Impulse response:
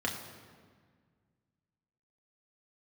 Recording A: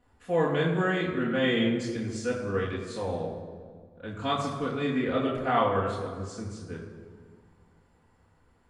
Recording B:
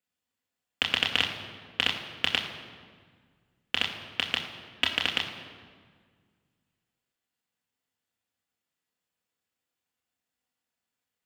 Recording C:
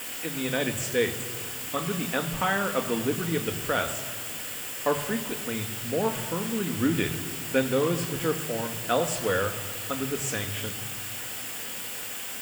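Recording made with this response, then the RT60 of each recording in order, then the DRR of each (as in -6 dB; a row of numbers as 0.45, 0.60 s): B; 1.7, 1.7, 1.7 s; -6.5, -1.0, 7.0 dB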